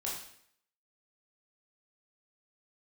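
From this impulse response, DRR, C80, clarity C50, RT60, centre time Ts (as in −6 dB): −5.0 dB, 6.5 dB, 3.0 dB, 0.65 s, 46 ms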